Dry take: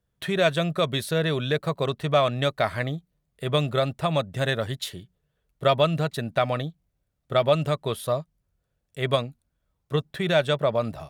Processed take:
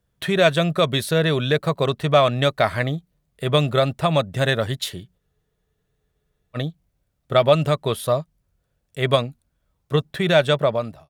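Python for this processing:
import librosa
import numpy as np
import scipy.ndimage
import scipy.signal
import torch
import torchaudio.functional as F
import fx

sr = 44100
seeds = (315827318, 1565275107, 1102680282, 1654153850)

y = fx.fade_out_tail(x, sr, length_s=0.5)
y = fx.spec_freeze(y, sr, seeds[0], at_s=5.21, hold_s=1.35)
y = F.gain(torch.from_numpy(y), 5.0).numpy()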